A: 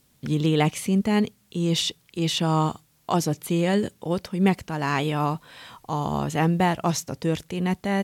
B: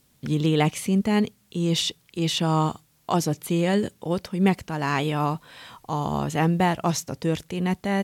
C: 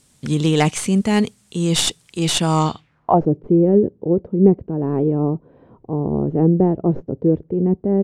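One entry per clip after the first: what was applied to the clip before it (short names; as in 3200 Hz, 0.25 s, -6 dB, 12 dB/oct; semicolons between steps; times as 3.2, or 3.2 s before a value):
nothing audible
tracing distortion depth 0.087 ms; low-pass sweep 8600 Hz -> 400 Hz, 2.56–3.28; gain +4.5 dB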